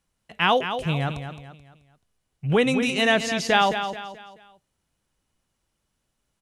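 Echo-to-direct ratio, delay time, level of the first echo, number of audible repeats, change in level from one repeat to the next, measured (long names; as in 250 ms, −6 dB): −8.5 dB, 216 ms, −9.0 dB, 4, −8.5 dB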